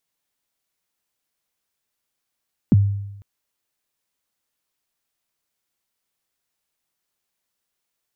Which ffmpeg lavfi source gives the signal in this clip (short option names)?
-f lavfi -i "aevalsrc='0.398*pow(10,-3*t/0.92)*sin(2*PI*(290*0.027/log(100/290)*(exp(log(100/290)*min(t,0.027)/0.027)-1)+100*max(t-0.027,0)))':d=0.5:s=44100"